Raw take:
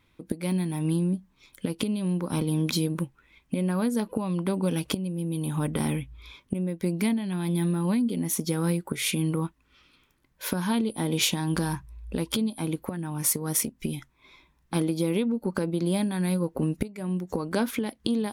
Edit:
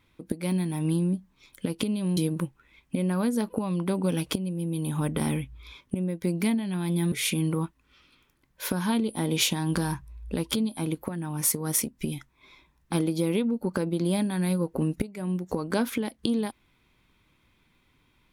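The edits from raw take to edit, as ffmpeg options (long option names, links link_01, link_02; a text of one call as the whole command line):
ffmpeg -i in.wav -filter_complex "[0:a]asplit=3[link_01][link_02][link_03];[link_01]atrim=end=2.172[link_04];[link_02]atrim=start=2.758:end=7.712[link_05];[link_03]atrim=start=8.928[link_06];[link_04][link_05]acrossfade=duration=0.004:curve1=hsin:curve2=hsin[link_07];[link_07][link_06]acrossfade=duration=0.004:curve1=hsin:curve2=hsin" out.wav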